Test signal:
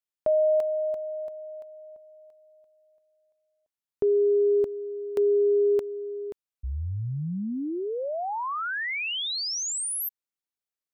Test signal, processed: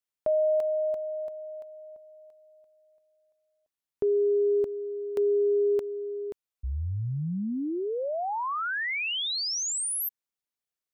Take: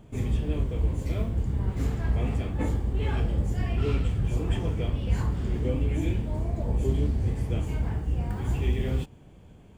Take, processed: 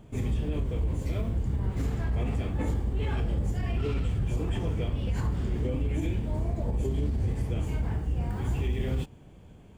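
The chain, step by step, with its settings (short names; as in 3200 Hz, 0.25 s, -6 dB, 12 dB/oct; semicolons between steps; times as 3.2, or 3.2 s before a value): limiter -20.5 dBFS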